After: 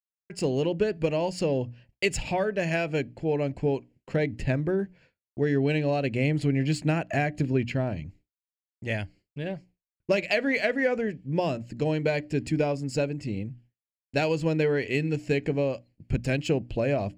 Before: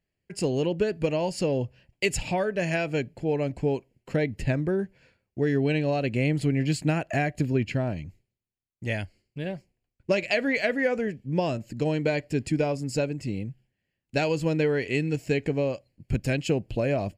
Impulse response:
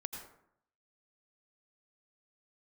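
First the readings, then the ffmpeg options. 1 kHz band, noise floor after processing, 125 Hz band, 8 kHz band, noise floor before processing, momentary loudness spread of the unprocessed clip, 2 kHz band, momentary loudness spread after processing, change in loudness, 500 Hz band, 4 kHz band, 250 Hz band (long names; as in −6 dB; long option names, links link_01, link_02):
0.0 dB, below −85 dBFS, −0.5 dB, −2.5 dB, −83 dBFS, 10 LU, 0.0 dB, 10 LU, 0.0 dB, 0.0 dB, −0.5 dB, −0.5 dB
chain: -af "adynamicsmooth=sensitivity=6:basefreq=7700,bandreject=frequency=60:width_type=h:width=6,bandreject=frequency=120:width_type=h:width=6,bandreject=frequency=180:width_type=h:width=6,bandreject=frequency=240:width_type=h:width=6,bandreject=frequency=300:width_type=h:width=6,agate=range=-33dB:threshold=-50dB:ratio=3:detection=peak"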